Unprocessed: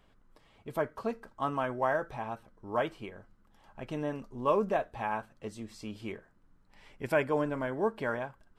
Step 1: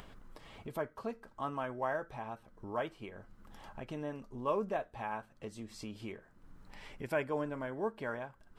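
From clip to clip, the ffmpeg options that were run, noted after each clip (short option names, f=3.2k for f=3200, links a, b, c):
-af "acompressor=mode=upward:threshold=-32dB:ratio=2.5,volume=-6dB"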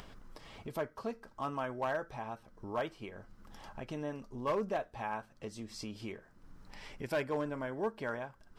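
-af "equalizer=f=5.3k:t=o:w=0.57:g=6,asoftclip=type=hard:threshold=-28dB,volume=1dB"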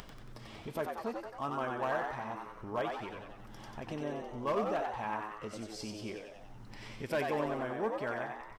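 -filter_complex "[0:a]acompressor=mode=upward:threshold=-47dB:ratio=2.5,asplit=2[a][b];[b]asplit=8[c][d][e][f][g][h][i][j];[c]adelay=92,afreqshift=100,volume=-4.5dB[k];[d]adelay=184,afreqshift=200,volume=-9.4dB[l];[e]adelay=276,afreqshift=300,volume=-14.3dB[m];[f]adelay=368,afreqshift=400,volume=-19.1dB[n];[g]adelay=460,afreqshift=500,volume=-24dB[o];[h]adelay=552,afreqshift=600,volume=-28.9dB[p];[i]adelay=644,afreqshift=700,volume=-33.8dB[q];[j]adelay=736,afreqshift=800,volume=-38.7dB[r];[k][l][m][n][o][p][q][r]amix=inputs=8:normalize=0[s];[a][s]amix=inputs=2:normalize=0"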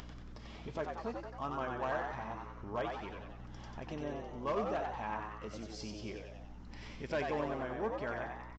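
-af "aresample=16000,aresample=44100,aeval=exprs='val(0)+0.00447*(sin(2*PI*60*n/s)+sin(2*PI*2*60*n/s)/2+sin(2*PI*3*60*n/s)/3+sin(2*PI*4*60*n/s)/4+sin(2*PI*5*60*n/s)/5)':c=same,volume=-2.5dB"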